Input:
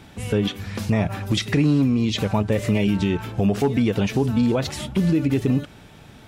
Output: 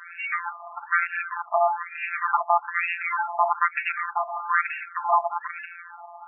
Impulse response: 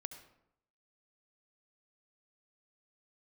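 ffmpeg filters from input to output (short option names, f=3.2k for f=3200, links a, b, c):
-af "afftfilt=real='hypot(re,im)*cos(PI*b)':imag='0':win_size=1024:overlap=0.75,aeval=exprs='0.447*sin(PI/2*6.31*val(0)/0.447)':c=same,afftfilt=real='re*between(b*sr/1024,870*pow(2000/870,0.5+0.5*sin(2*PI*1.1*pts/sr))/1.41,870*pow(2000/870,0.5+0.5*sin(2*PI*1.1*pts/sr))*1.41)':imag='im*between(b*sr/1024,870*pow(2000/870,0.5+0.5*sin(2*PI*1.1*pts/sr))/1.41,870*pow(2000/870,0.5+0.5*sin(2*PI*1.1*pts/sr))*1.41)':win_size=1024:overlap=0.75,volume=-2.5dB"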